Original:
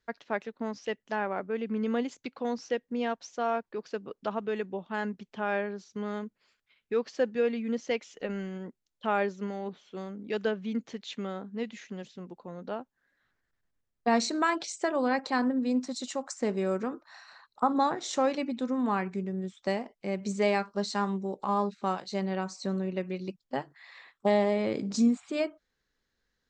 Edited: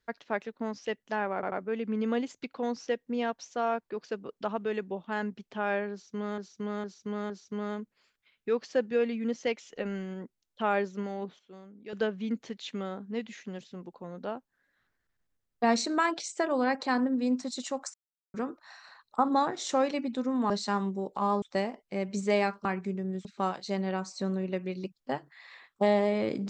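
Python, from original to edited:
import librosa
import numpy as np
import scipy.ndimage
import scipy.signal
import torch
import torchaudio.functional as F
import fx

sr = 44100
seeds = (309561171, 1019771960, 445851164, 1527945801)

y = fx.edit(x, sr, fx.stutter(start_s=1.34, slice_s=0.09, count=3),
    fx.repeat(start_s=5.74, length_s=0.46, count=4),
    fx.clip_gain(start_s=9.83, length_s=0.54, db=-10.5),
    fx.silence(start_s=16.38, length_s=0.4),
    fx.swap(start_s=18.94, length_s=0.6, other_s=20.77, other_length_s=0.92), tone=tone)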